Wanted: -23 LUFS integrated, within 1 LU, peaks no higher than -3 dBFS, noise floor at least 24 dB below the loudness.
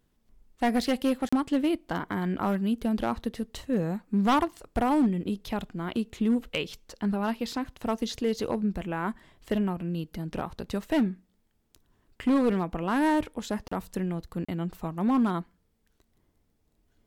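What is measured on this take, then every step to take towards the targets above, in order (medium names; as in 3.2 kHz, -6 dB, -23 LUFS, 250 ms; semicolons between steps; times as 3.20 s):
clipped samples 0.9%; clipping level -18.5 dBFS; dropouts 3; longest dropout 35 ms; loudness -29.0 LUFS; peak level -18.5 dBFS; loudness target -23.0 LUFS
-> clip repair -18.5 dBFS; interpolate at 1.29/13.68/14.45 s, 35 ms; trim +6 dB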